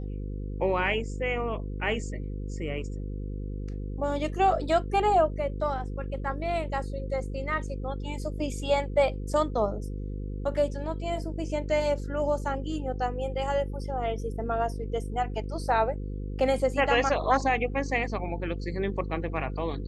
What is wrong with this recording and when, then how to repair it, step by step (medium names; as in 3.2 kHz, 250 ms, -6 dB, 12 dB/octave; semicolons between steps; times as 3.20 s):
buzz 50 Hz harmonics 10 -34 dBFS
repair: de-hum 50 Hz, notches 10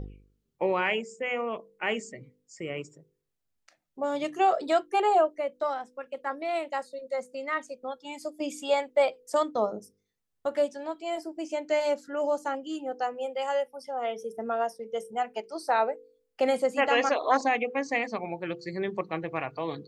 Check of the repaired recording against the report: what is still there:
nothing left